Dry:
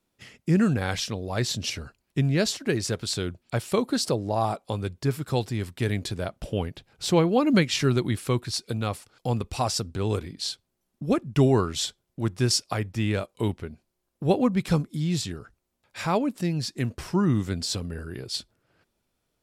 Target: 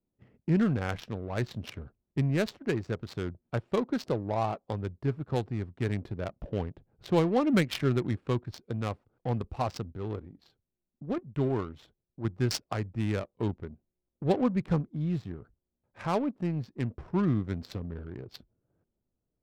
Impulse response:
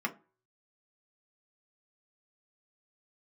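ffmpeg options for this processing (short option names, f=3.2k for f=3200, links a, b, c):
-filter_complex "[0:a]asettb=1/sr,asplit=3[a][b][c];[a]atrim=end=9.924[d];[b]atrim=start=9.92:end=12.25,asetpts=PTS-STARTPTS,afade=t=in:d=0.004:c=qsin,afade=t=out:st=2.326:d=0.004:c=qsin,flanger=delay=1.8:depth=2.2:regen=83:speed=1.4:shape=triangular[e];[c]atrim=start=12.246[f];[d][e]acrossfade=d=0.004:c1=hsin:c2=qsin[g];[g][f]acrossfade=d=0.004:c1=qsin:c2=hsin,adynamicsmooth=sensitivity=2.5:basefreq=570,volume=-4dB"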